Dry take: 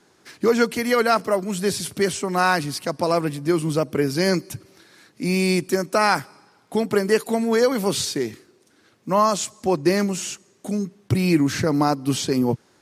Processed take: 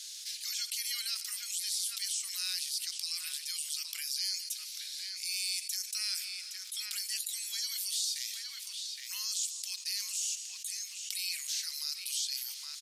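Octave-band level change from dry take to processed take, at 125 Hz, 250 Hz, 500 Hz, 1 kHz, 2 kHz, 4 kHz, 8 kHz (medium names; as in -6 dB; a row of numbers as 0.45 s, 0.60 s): under -40 dB, under -40 dB, under -40 dB, under -35 dB, -18.0 dB, -2.0 dB, -1.5 dB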